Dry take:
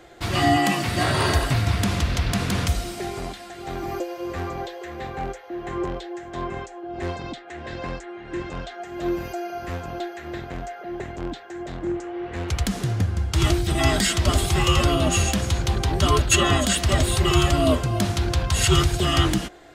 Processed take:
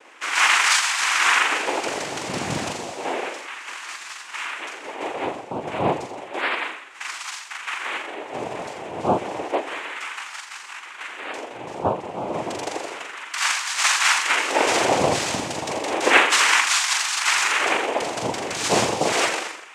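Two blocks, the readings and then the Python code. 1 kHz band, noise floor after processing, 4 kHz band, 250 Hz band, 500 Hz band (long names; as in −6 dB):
+4.0 dB, −39 dBFS, +2.5 dB, −6.5 dB, +0.5 dB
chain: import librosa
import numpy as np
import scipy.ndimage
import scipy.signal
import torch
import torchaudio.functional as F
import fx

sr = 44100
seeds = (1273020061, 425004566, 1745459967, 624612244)

y = scipy.signal.sosfilt(scipy.signal.butter(2, 5400.0, 'lowpass', fs=sr, output='sos'), x)
y = fx.low_shelf(y, sr, hz=320.0, db=-12.0)
y = fx.filter_lfo_highpass(y, sr, shape='sine', hz=0.31, low_hz=290.0, high_hz=2500.0, q=5.4)
y = fx.room_flutter(y, sr, wall_m=7.2, rt60_s=0.68)
y = fx.noise_vocoder(y, sr, seeds[0], bands=4)
y = y * librosa.db_to_amplitude(-1.0)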